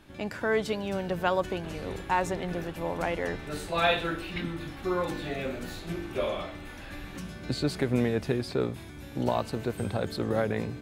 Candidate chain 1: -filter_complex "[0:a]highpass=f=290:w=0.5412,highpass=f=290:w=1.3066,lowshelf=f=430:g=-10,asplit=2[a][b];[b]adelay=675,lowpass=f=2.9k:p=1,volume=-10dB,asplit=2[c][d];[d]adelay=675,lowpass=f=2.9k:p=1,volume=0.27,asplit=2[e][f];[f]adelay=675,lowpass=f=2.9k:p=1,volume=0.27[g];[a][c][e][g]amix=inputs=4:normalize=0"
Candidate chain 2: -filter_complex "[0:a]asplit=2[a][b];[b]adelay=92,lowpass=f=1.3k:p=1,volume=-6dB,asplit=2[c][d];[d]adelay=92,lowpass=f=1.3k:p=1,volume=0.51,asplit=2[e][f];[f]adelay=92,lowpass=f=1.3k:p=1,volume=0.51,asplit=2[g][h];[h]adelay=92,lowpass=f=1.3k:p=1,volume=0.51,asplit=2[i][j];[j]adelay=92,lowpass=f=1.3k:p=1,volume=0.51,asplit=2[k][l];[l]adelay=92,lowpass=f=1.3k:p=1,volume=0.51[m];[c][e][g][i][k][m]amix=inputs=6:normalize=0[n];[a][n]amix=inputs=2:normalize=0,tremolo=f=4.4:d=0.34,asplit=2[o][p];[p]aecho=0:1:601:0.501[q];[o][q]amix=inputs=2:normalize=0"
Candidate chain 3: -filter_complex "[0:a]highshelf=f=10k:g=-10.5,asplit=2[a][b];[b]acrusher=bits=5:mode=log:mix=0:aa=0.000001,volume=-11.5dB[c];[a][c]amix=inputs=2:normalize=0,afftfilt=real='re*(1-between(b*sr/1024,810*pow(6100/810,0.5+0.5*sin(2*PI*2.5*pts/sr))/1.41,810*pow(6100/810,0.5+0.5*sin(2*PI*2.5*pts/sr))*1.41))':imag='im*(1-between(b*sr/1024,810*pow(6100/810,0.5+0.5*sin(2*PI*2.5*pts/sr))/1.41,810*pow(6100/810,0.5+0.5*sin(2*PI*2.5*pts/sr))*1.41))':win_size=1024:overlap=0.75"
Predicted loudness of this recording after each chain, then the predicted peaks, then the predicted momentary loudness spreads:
-34.5, -31.0, -29.0 LUFS; -13.5, -11.0, -9.5 dBFS; 11, 8, 11 LU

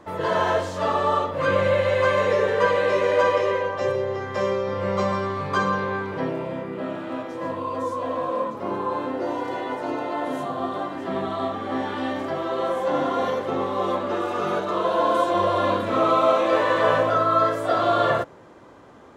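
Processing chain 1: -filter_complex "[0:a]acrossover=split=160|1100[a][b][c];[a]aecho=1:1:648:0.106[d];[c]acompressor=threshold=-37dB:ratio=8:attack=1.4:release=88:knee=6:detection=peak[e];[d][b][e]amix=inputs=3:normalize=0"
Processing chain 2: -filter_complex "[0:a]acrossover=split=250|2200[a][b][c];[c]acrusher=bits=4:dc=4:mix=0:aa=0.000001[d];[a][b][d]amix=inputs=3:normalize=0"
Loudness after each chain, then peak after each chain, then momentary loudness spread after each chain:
-25.0, -23.5 LUFS; -8.0, -6.0 dBFS; 8, 9 LU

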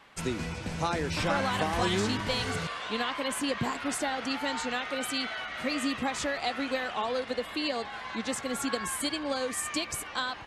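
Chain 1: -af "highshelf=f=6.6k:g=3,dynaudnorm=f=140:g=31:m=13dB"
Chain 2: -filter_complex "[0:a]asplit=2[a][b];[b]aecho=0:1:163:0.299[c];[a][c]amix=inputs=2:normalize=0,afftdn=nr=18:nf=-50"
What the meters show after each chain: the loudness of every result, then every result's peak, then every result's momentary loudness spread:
-21.0, -30.5 LUFS; -3.0, -15.0 dBFS; 12, 6 LU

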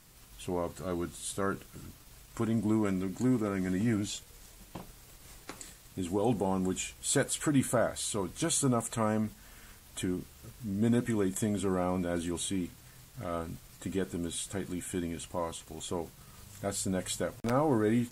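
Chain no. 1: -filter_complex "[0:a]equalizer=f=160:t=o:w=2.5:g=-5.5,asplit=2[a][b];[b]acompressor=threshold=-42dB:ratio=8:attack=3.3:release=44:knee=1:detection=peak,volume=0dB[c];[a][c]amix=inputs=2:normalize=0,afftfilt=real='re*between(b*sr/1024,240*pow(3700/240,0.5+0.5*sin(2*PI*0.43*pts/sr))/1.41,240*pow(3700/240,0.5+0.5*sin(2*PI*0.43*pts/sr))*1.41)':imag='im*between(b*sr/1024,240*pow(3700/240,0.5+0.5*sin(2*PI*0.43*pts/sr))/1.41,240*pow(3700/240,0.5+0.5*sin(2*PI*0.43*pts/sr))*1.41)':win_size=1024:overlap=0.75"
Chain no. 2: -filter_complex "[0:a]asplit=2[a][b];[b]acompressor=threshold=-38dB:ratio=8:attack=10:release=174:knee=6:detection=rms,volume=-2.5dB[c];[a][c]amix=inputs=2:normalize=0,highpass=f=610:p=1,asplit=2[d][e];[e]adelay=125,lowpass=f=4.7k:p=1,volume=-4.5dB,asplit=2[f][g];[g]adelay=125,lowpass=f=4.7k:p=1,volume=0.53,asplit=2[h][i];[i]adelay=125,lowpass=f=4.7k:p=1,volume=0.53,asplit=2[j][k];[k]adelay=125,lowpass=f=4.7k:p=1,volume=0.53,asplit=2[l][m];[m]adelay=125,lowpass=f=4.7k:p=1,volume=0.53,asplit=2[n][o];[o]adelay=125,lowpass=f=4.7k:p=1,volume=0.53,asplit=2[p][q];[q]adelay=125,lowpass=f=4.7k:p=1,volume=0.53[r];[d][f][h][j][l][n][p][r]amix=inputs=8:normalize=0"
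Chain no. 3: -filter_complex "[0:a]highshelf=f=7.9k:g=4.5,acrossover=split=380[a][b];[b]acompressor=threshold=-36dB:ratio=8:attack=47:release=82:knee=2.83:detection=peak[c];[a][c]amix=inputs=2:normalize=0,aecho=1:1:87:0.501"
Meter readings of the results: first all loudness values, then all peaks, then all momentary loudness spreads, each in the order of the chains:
-40.0, -34.0, -32.0 LUFS; -21.5, -16.0, -14.5 dBFS; 20, 16, 18 LU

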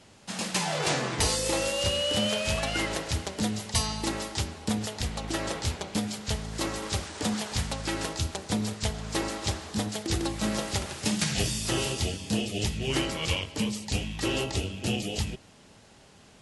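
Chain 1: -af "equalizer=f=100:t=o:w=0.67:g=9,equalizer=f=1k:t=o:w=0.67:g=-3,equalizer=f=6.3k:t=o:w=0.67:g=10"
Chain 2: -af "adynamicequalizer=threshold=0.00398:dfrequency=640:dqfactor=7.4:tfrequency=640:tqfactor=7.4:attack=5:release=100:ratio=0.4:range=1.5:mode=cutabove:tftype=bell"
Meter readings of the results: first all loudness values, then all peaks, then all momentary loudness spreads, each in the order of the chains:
-26.0, -29.5 LUFS; -7.0, -13.5 dBFS; 6, 6 LU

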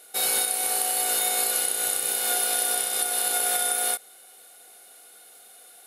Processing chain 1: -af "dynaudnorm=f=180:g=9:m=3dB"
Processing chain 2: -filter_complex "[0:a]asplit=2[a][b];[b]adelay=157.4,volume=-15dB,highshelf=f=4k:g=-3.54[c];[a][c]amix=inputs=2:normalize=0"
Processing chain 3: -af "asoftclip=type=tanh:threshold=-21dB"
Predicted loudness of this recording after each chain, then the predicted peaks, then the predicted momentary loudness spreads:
-20.0, -22.5, -25.0 LUFS; -7.0, -9.5, -21.0 dBFS; 3, 2, 1 LU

